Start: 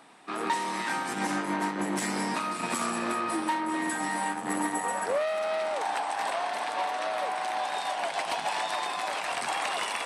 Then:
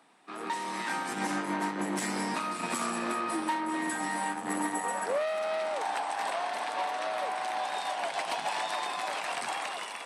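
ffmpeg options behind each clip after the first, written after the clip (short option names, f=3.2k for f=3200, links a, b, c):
-af "highpass=f=130:w=0.5412,highpass=f=130:w=1.3066,dynaudnorm=f=110:g=11:m=6dB,volume=-8dB"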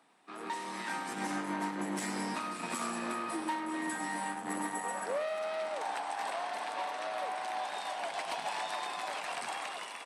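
-af "aecho=1:1:102:0.224,volume=-4.5dB"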